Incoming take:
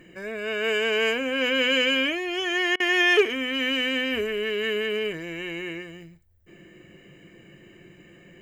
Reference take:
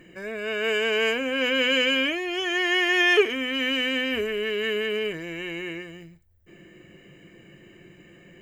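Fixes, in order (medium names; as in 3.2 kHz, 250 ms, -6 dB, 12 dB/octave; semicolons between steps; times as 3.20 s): clip repair -10.5 dBFS; interpolate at 2.76 s, 39 ms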